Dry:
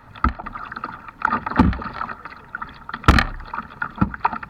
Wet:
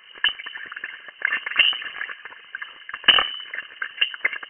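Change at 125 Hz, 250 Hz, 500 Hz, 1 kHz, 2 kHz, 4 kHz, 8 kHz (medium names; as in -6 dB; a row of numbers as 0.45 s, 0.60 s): under -30 dB, -25.5 dB, -8.0 dB, -10.5 dB, +4.0 dB, +15.0 dB, under -35 dB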